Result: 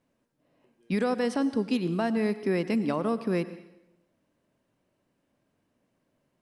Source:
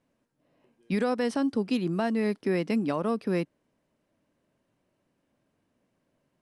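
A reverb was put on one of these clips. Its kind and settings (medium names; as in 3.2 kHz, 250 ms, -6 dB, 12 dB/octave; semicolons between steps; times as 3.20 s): plate-style reverb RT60 0.89 s, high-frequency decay 0.9×, pre-delay 85 ms, DRR 13.5 dB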